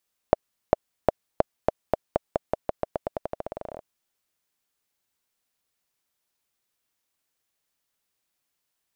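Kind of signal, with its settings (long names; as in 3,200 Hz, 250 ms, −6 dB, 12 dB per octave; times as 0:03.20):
bouncing ball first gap 0.40 s, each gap 0.89, 622 Hz, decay 18 ms −1.5 dBFS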